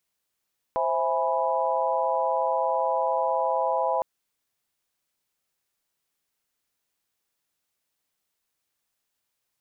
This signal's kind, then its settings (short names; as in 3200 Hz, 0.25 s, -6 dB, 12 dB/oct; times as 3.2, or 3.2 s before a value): chord C5/E5/G#5/B5 sine, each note -27.5 dBFS 3.26 s